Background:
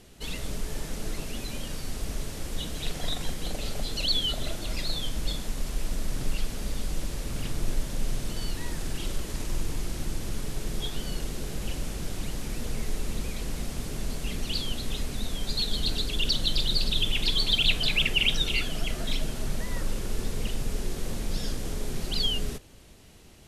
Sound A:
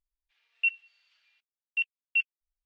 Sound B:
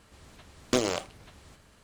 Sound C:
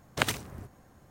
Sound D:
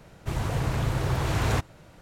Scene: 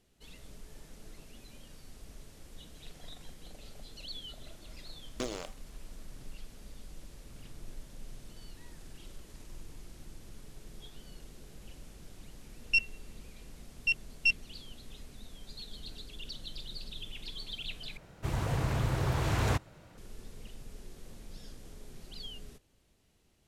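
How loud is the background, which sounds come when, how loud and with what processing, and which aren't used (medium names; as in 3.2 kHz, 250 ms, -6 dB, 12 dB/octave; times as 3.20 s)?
background -17.5 dB
4.47 s: add B -11.5 dB
12.10 s: add A -0.5 dB + tracing distortion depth 0.034 ms
17.97 s: replace with D -4 dB
not used: C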